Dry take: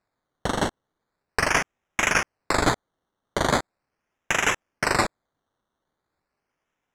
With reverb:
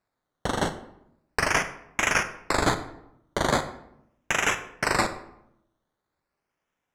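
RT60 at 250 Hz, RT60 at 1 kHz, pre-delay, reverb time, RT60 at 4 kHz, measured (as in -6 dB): 0.95 s, 0.75 s, 28 ms, 0.80 s, 0.50 s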